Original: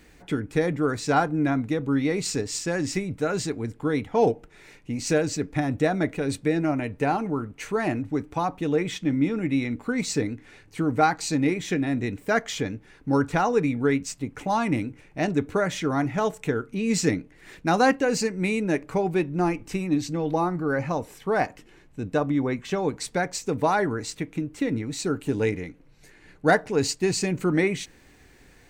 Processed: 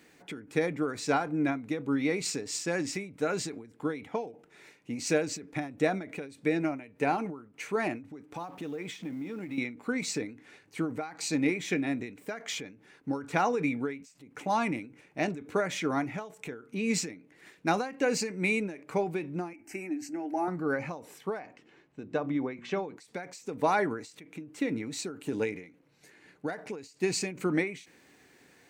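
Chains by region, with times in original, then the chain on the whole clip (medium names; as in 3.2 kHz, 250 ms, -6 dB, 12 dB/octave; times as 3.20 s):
8.34–9.58 s: companding laws mixed up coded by mu + compression 5:1, threshold -30 dBFS
19.53–20.48 s: peaking EQ 170 Hz -6 dB 0.44 oct + static phaser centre 730 Hz, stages 8
21.39–22.97 s: distance through air 100 m + hum notches 60/120/180/240/300/360 Hz
whole clip: high-pass 180 Hz 12 dB/octave; dynamic bell 2.3 kHz, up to +7 dB, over -51 dBFS, Q 6.4; endings held to a fixed fall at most 120 dB/s; trim -3.5 dB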